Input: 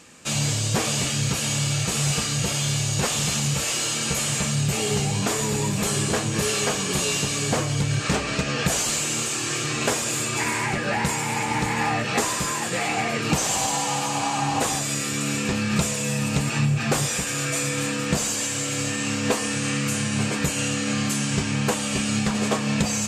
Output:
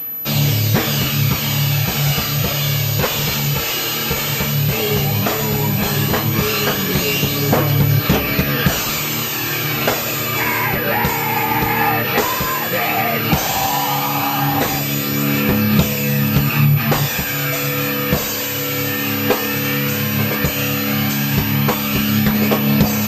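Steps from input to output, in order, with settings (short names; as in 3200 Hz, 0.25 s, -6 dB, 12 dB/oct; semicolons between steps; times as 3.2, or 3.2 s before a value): phaser 0.13 Hz, delay 2.5 ms, feedback 28%; pulse-width modulation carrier 12000 Hz; gain +6.5 dB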